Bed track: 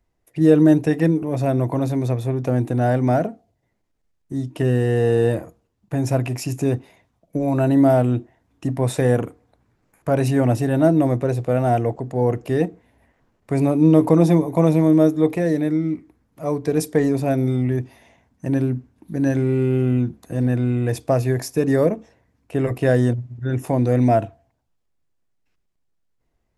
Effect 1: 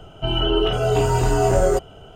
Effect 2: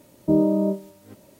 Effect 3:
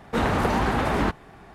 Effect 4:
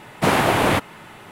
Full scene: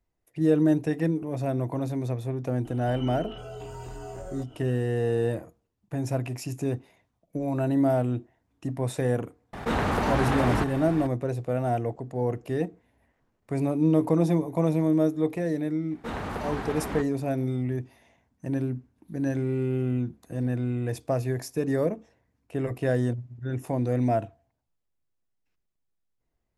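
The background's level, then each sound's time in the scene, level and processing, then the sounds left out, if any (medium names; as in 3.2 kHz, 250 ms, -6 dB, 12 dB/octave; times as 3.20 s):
bed track -8 dB
2.65 s: add 1 -9 dB + compression 2.5:1, threshold -33 dBFS
9.53 s: add 3 -4 dB + level flattener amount 50%
15.91 s: add 3 -10.5 dB
not used: 2, 4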